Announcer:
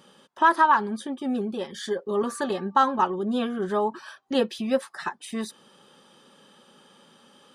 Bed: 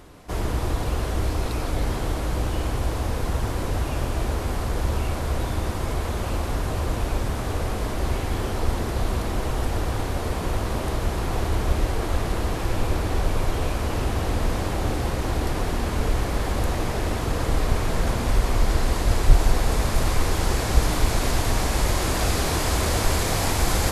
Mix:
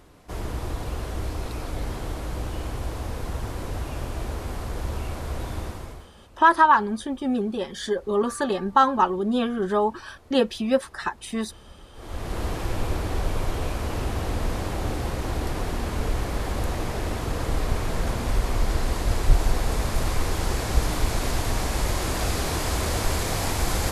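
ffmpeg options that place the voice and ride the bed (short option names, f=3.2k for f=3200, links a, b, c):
-filter_complex "[0:a]adelay=6000,volume=2.5dB[a];[1:a]volume=17.5dB,afade=t=out:st=5.6:d=0.49:silence=0.0944061,afade=t=in:st=11.93:d=0.51:silence=0.0707946[b];[a][b]amix=inputs=2:normalize=0"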